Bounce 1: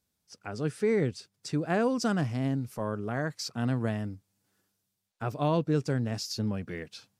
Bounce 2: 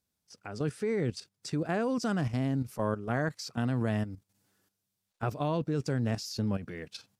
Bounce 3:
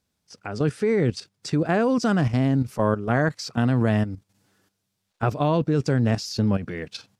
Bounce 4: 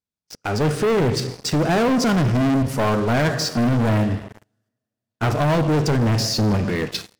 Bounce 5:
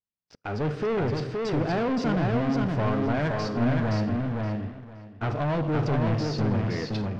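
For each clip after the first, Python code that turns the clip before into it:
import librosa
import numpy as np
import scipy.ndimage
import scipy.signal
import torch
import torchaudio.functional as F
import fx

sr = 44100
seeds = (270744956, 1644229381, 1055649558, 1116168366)

y1 = fx.level_steps(x, sr, step_db=11)
y1 = y1 * 10.0 ** (4.0 / 20.0)
y2 = fx.high_shelf(y1, sr, hz=9500.0, db=-11.5)
y2 = y2 * 10.0 ** (9.0 / 20.0)
y3 = fx.rev_double_slope(y2, sr, seeds[0], early_s=0.99, late_s=3.2, knee_db=-24, drr_db=9.5)
y3 = fx.leveller(y3, sr, passes=5)
y3 = y3 * 10.0 ** (-8.0 / 20.0)
y4 = fx.air_absorb(y3, sr, metres=200.0)
y4 = fx.echo_feedback(y4, sr, ms=520, feedback_pct=18, wet_db=-3)
y4 = y4 * 10.0 ** (-7.5 / 20.0)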